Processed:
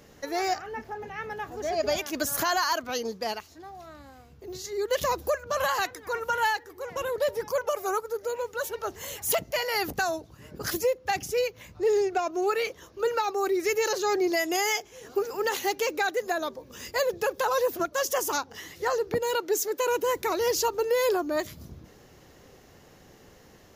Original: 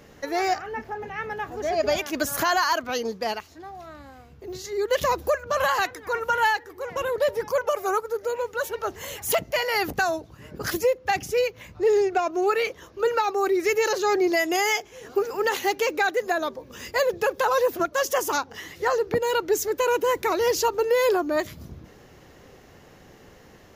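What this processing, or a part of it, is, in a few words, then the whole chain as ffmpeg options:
exciter from parts: -filter_complex "[0:a]asplit=2[link_01][link_02];[link_02]highpass=3200,asoftclip=type=tanh:threshold=-19dB,volume=-4dB[link_03];[link_01][link_03]amix=inputs=2:normalize=0,asettb=1/sr,asplit=3[link_04][link_05][link_06];[link_04]atrim=end=19.354[link_07];[link_05]atrim=start=19.35:end=19.87,asetpts=PTS-STARTPTS,afade=type=in:duration=0.004:curve=qsin,afade=type=out:start_time=0.516:duration=0.004:curve=qsin,highpass=240[link_08];[link_06]atrim=start=19.866[link_09];[link_07][link_08]acrossfade=duration=0.004:curve1=hsin:curve2=qsin[link_10];[link_10][link_09]acrossfade=duration=0.004:curve1=qsin:curve2=hsin,volume=-3.5dB"

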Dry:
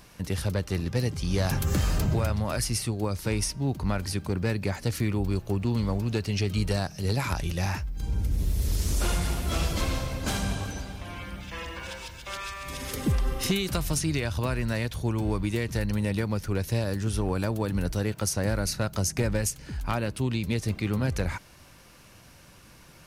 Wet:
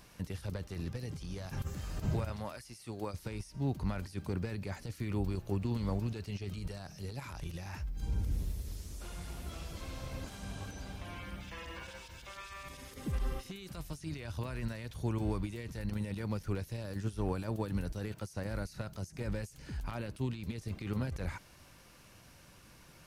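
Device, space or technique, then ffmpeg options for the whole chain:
de-esser from a sidechain: -filter_complex "[0:a]asplit=2[link_01][link_02];[link_02]highpass=4300,apad=whole_len=1017021[link_03];[link_01][link_03]sidechaincompress=threshold=-47dB:ratio=6:attack=0.56:release=35,asettb=1/sr,asplit=3[link_04][link_05][link_06];[link_04]atrim=end=2.314[link_07];[link_05]atrim=start=2.31:end=3.14,asetpts=PTS-STARTPTS,afade=type=in:duration=0.004:curve=qsin,afade=type=out:start_time=0.826:duration=0.004:curve=qsin,lowshelf=frequency=210:gain=-11.5[link_08];[link_06]atrim=start=3.136[link_09];[link_07][link_08]acrossfade=duration=0.004:curve1=hsin:curve2=qsin[link_10];[link_10][link_09]acrossfade=duration=0.004:curve1=qsin:curve2=hsin,volume=-5.5dB"

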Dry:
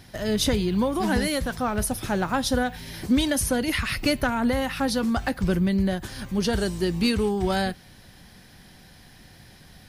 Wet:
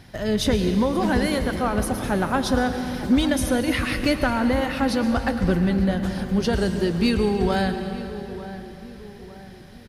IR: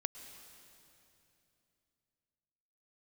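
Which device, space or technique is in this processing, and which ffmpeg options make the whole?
swimming-pool hall: -filter_complex "[1:a]atrim=start_sample=2205[link_01];[0:a][link_01]afir=irnorm=-1:irlink=0,highshelf=frequency=4500:gain=-8,asplit=2[link_02][link_03];[link_03]adelay=903,lowpass=frequency=1800:poles=1,volume=-14dB,asplit=2[link_04][link_05];[link_05]adelay=903,lowpass=frequency=1800:poles=1,volume=0.47,asplit=2[link_06][link_07];[link_07]adelay=903,lowpass=frequency=1800:poles=1,volume=0.47,asplit=2[link_08][link_09];[link_09]adelay=903,lowpass=frequency=1800:poles=1,volume=0.47[link_10];[link_02][link_04][link_06][link_08][link_10]amix=inputs=5:normalize=0,volume=3.5dB"

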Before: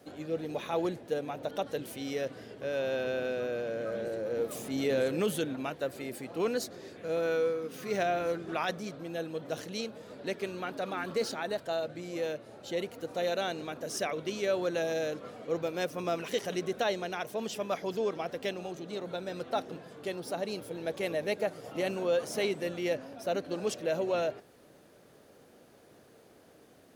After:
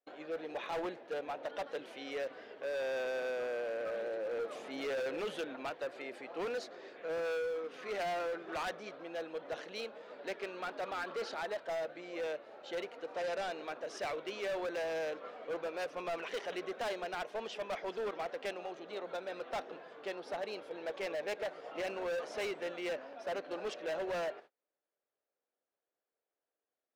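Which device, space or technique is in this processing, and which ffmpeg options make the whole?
walkie-talkie: -filter_complex "[0:a]highpass=530,lowpass=2900,asoftclip=type=hard:threshold=-35dB,agate=range=-32dB:threshold=-55dB:ratio=16:detection=peak,asettb=1/sr,asplit=3[link_01][link_02][link_03];[link_01]atrim=end=12.984[link_04];[link_02]atrim=start=12.98:end=13.51,asetpts=PTS-STARTPTS,afade=type=in:duration=0.004:curve=qsin,afade=type=out:start_time=0.526:duration=0.004:curve=qsin,lowpass=10000[link_05];[link_03]atrim=start=13.506[link_06];[link_04][link_05]acrossfade=duration=0.004:curve1=hsin:curve2=qsin[link_07];[link_07][link_06]acrossfade=duration=0.004:curve1=qsin:curve2=hsin,volume=1dB"

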